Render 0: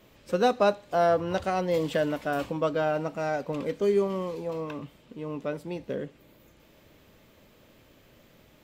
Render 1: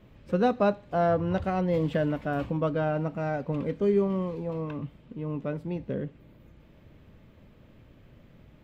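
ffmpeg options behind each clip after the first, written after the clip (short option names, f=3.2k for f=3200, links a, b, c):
-af "bass=f=250:g=11,treble=f=4k:g=-13,volume=-2.5dB"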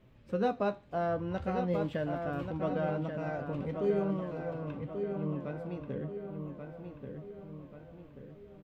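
-filter_complex "[0:a]flanger=delay=7.7:depth=7.4:regen=62:speed=0.44:shape=sinusoidal,asplit=2[a][b];[b]adelay=1135,lowpass=f=3.6k:p=1,volume=-6dB,asplit=2[c][d];[d]adelay=1135,lowpass=f=3.6k:p=1,volume=0.5,asplit=2[e][f];[f]adelay=1135,lowpass=f=3.6k:p=1,volume=0.5,asplit=2[g][h];[h]adelay=1135,lowpass=f=3.6k:p=1,volume=0.5,asplit=2[i][j];[j]adelay=1135,lowpass=f=3.6k:p=1,volume=0.5,asplit=2[k][l];[l]adelay=1135,lowpass=f=3.6k:p=1,volume=0.5[m];[c][e][g][i][k][m]amix=inputs=6:normalize=0[n];[a][n]amix=inputs=2:normalize=0,volume=-2.5dB"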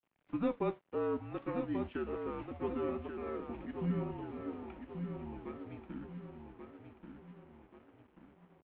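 -af "aeval=exprs='sgn(val(0))*max(abs(val(0))-0.00168,0)':c=same,highpass=f=390:t=q:w=0.5412,highpass=f=390:t=q:w=1.307,lowpass=f=3.5k:t=q:w=0.5176,lowpass=f=3.5k:t=q:w=0.7071,lowpass=f=3.5k:t=q:w=1.932,afreqshift=-230,volume=-1.5dB"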